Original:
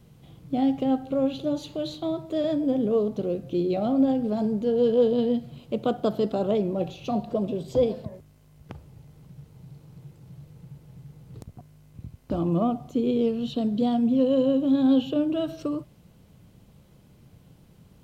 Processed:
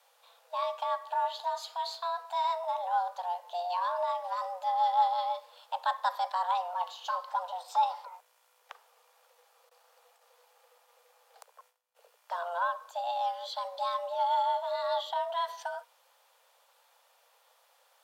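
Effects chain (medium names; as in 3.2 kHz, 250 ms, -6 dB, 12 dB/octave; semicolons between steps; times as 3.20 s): 9.69–12.05 s: gate -50 dBFS, range -20 dB; high-pass 580 Hz 12 dB/octave; frequency shift +350 Hz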